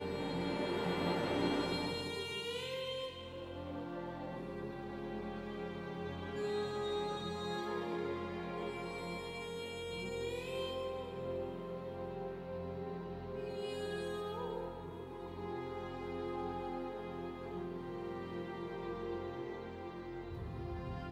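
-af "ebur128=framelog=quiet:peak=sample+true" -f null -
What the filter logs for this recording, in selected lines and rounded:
Integrated loudness:
  I:         -41.2 LUFS
  Threshold: -51.2 LUFS
Loudness range:
  LRA:         5.4 LU
  Threshold: -61.6 LUFS
  LRA low:   -43.8 LUFS
  LRA high:  -38.4 LUFS
Sample peak:
  Peak:      -23.0 dBFS
True peak:
  Peak:      -22.9 dBFS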